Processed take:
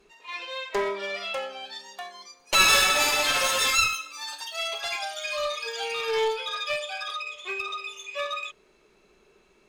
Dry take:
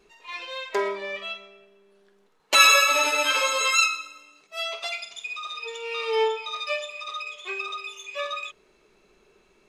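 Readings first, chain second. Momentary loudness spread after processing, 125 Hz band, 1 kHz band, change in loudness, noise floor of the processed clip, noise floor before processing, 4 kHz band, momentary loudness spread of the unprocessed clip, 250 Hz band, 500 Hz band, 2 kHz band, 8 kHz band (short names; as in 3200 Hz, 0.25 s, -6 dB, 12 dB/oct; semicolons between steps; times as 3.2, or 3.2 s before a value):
17 LU, n/a, -2.0 dB, -2.0 dB, -62 dBFS, -62 dBFS, -0.5 dB, 18 LU, +1.0 dB, -1.0 dB, -2.0 dB, -0.5 dB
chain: echoes that change speed 0.784 s, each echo +5 st, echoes 3, each echo -6 dB; one-sided clip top -25 dBFS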